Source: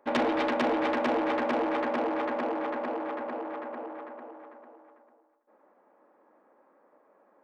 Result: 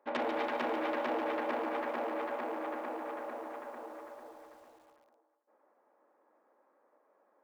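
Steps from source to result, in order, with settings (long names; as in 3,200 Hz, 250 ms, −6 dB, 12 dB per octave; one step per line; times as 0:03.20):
bass and treble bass −10 dB, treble −6 dB
feedback echo at a low word length 143 ms, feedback 55%, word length 9 bits, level −7.5 dB
level −6.5 dB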